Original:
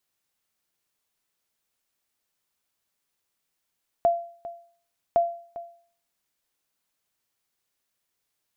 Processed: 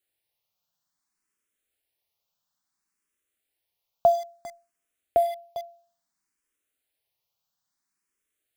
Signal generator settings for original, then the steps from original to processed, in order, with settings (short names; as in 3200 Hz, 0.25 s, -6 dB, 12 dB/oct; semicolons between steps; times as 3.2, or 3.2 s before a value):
sonar ping 685 Hz, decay 0.49 s, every 1.11 s, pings 2, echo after 0.40 s, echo -16.5 dB -13.5 dBFS
in parallel at -4 dB: bit-crush 6-bit; on the sum: endless phaser +0.59 Hz